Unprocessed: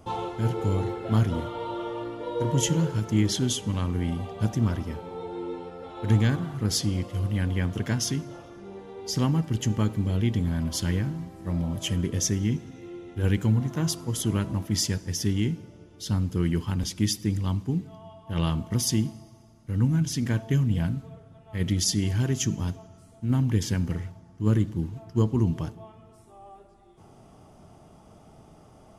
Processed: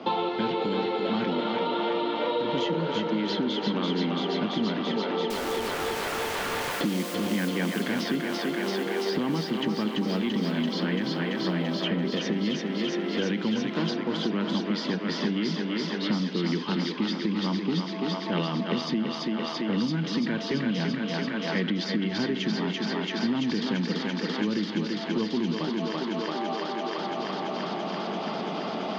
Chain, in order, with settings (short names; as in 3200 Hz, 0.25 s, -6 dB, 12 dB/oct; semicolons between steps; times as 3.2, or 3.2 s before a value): Chebyshev band-pass 190–4300 Hz, order 4; limiter -24 dBFS, peak gain reduction 9 dB; 5.3–6.81 wrapped overs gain 41 dB; thinning echo 0.337 s, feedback 80%, high-pass 310 Hz, level -3.5 dB; three-band squash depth 100%; gain +4.5 dB